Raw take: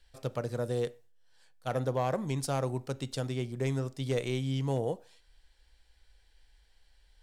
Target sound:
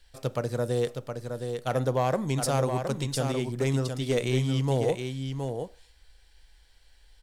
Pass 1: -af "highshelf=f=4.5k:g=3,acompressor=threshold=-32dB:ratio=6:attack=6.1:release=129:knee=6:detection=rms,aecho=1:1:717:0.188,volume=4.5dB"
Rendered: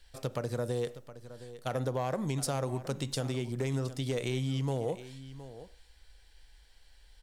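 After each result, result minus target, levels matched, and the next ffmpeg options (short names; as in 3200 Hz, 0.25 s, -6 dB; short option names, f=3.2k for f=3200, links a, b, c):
compressor: peak gain reduction +8 dB; echo-to-direct -8.5 dB
-af "highshelf=f=4.5k:g=3,aecho=1:1:717:0.188,volume=4.5dB"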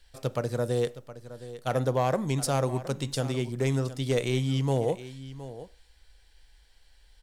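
echo-to-direct -8.5 dB
-af "highshelf=f=4.5k:g=3,aecho=1:1:717:0.501,volume=4.5dB"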